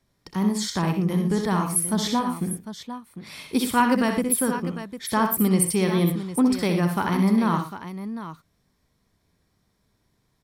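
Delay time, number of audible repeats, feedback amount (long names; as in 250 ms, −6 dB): 63 ms, 3, repeats not evenly spaced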